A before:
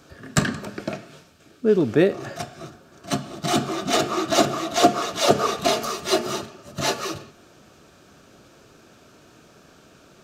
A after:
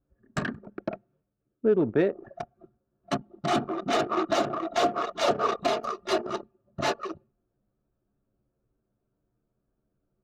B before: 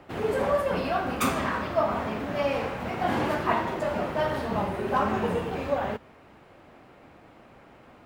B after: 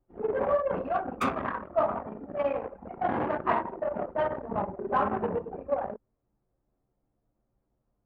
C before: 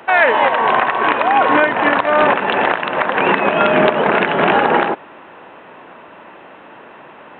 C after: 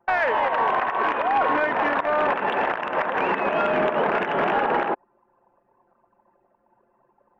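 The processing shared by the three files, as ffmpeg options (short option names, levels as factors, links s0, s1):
-filter_complex "[0:a]anlmdn=398,alimiter=limit=0.282:level=0:latency=1:release=200,asplit=2[s0][s1];[s1]highpass=f=720:p=1,volume=2.24,asoftclip=type=tanh:threshold=0.282[s2];[s0][s2]amix=inputs=2:normalize=0,lowpass=f=1300:p=1,volume=0.501"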